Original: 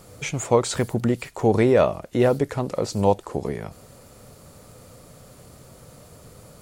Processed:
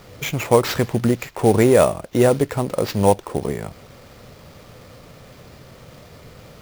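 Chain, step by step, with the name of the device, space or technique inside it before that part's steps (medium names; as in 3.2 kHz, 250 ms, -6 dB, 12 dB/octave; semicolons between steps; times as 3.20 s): early companding sampler (sample-rate reducer 9.4 kHz, jitter 0%; companded quantiser 6-bit); trim +3.5 dB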